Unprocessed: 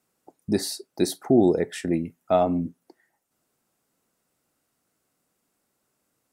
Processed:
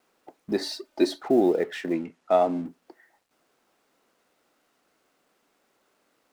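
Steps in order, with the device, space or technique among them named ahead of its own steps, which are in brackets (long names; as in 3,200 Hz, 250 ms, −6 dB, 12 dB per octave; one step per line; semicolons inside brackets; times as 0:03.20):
phone line with mismatched companding (band-pass filter 310–3,500 Hz; mu-law and A-law mismatch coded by mu)
0:00.61–0:01.21: comb filter 3.3 ms, depth 85%
0:01.93–0:02.66: low-pass filter 9,100 Hz 12 dB per octave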